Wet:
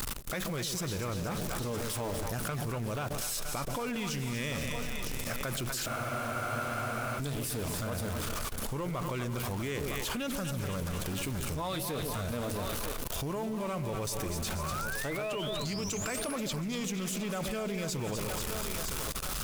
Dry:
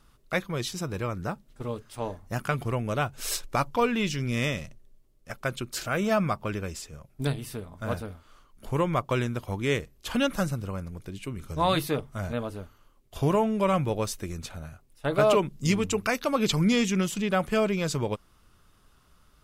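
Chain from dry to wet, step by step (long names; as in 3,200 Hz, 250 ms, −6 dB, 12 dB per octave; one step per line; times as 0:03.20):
converter with a step at zero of −33.5 dBFS
high-shelf EQ 6,300 Hz +9.5 dB
feedback echo with a high-pass in the loop 959 ms, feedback 36%, high-pass 270 Hz, level −17 dB
leveller curve on the samples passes 1
echo with a time of its own for lows and highs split 650 Hz, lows 131 ms, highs 242 ms, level −9.5 dB
downward compressor 4 to 1, threshold −23 dBFS, peak gain reduction 8 dB
sound drawn into the spectrogram rise, 0:14.59–0:16.36, 1,000–11,000 Hz −34 dBFS
output level in coarse steps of 17 dB
frozen spectrum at 0:05.90, 1.28 s
highs frequency-modulated by the lows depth 0.11 ms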